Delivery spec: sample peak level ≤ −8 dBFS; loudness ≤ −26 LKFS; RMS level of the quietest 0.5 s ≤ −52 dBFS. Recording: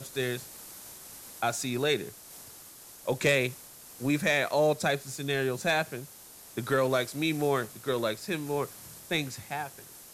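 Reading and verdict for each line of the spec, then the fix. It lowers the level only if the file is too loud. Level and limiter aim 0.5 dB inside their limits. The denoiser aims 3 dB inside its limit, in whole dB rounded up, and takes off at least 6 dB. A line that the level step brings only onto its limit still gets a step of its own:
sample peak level −13.0 dBFS: in spec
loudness −29.5 LKFS: in spec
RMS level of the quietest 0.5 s −50 dBFS: out of spec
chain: broadband denoise 6 dB, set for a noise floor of −50 dBFS

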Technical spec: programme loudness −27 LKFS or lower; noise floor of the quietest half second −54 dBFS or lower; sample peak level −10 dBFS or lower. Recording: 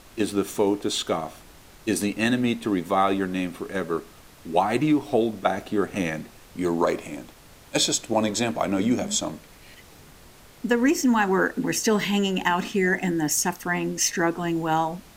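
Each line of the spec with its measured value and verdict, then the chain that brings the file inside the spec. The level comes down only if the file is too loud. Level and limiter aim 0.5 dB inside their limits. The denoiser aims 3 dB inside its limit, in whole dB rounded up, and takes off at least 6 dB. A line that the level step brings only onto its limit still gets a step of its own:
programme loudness −24.5 LKFS: out of spec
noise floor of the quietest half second −49 dBFS: out of spec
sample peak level −6.5 dBFS: out of spec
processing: broadband denoise 6 dB, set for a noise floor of −49 dBFS
level −3 dB
brickwall limiter −10.5 dBFS

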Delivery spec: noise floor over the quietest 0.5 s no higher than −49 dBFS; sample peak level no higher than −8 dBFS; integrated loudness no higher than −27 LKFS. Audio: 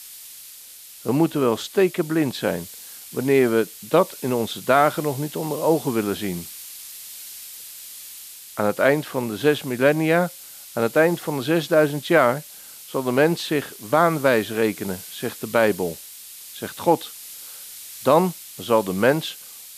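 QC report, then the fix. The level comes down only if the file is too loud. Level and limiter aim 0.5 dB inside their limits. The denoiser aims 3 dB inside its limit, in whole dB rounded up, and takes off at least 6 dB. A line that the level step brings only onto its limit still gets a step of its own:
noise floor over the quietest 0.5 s −43 dBFS: out of spec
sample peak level −3.5 dBFS: out of spec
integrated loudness −21.5 LKFS: out of spec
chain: broadband denoise 6 dB, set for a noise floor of −43 dBFS
level −6 dB

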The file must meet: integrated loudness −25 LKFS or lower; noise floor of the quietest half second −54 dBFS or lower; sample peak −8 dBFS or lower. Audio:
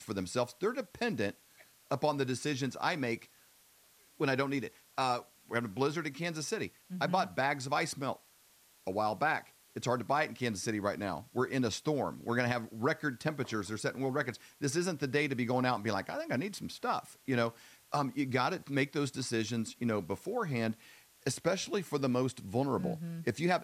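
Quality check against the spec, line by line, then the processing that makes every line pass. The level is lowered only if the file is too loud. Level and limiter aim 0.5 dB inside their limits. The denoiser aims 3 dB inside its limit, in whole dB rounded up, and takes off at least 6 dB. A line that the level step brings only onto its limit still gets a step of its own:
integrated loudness −34.5 LKFS: in spec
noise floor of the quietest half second −64 dBFS: in spec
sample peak −16.0 dBFS: in spec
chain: no processing needed

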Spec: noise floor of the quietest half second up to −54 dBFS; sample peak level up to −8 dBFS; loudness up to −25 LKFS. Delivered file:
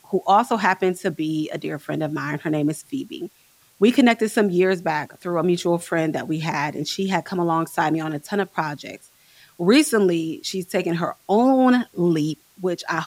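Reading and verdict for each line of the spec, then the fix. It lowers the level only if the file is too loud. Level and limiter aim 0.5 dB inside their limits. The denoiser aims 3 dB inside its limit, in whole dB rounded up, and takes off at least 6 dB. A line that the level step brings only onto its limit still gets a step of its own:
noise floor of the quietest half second −57 dBFS: in spec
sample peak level −5.0 dBFS: out of spec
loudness −21.5 LKFS: out of spec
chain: level −4 dB

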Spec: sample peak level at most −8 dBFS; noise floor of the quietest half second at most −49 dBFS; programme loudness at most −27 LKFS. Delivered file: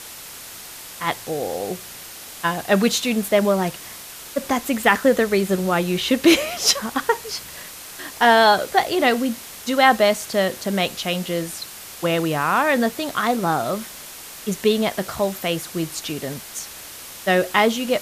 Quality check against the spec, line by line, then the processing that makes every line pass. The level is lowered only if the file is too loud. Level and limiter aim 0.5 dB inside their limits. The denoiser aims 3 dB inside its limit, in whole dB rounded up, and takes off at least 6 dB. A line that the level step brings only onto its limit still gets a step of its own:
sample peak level −2.0 dBFS: out of spec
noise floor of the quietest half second −38 dBFS: out of spec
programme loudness −20.5 LKFS: out of spec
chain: broadband denoise 7 dB, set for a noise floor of −38 dBFS
level −7 dB

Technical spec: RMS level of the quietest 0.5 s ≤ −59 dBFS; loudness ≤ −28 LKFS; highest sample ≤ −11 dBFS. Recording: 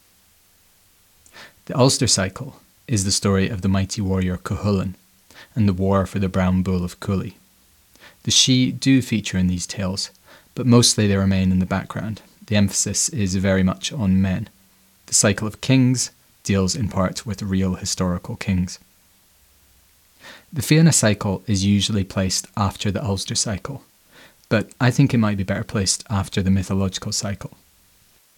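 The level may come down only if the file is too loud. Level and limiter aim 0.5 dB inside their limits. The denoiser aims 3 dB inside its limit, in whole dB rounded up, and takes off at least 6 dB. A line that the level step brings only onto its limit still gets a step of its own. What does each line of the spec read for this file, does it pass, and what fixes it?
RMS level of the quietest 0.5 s −57 dBFS: out of spec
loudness −20.0 LKFS: out of spec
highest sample −2.5 dBFS: out of spec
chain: level −8.5 dB
brickwall limiter −11.5 dBFS

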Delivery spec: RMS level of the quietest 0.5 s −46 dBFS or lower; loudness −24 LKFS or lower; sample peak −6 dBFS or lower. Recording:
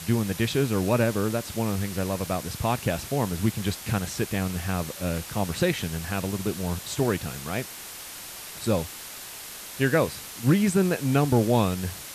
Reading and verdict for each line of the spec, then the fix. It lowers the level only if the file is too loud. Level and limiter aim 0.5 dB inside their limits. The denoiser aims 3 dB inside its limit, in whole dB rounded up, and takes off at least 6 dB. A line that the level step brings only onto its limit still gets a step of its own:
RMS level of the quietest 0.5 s −40 dBFS: out of spec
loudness −26.5 LKFS: in spec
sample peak −10.5 dBFS: in spec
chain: broadband denoise 9 dB, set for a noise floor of −40 dBFS

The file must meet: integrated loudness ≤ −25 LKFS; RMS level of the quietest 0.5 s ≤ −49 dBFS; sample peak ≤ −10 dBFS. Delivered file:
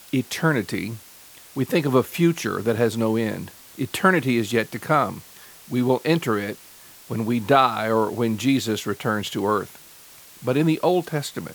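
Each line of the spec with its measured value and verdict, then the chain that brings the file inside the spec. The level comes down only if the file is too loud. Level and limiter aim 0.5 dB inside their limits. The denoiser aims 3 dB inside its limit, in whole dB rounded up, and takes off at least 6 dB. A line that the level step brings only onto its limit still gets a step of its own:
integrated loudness −22.5 LKFS: out of spec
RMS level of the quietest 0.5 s −47 dBFS: out of spec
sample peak −3.0 dBFS: out of spec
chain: level −3 dB
brickwall limiter −10.5 dBFS

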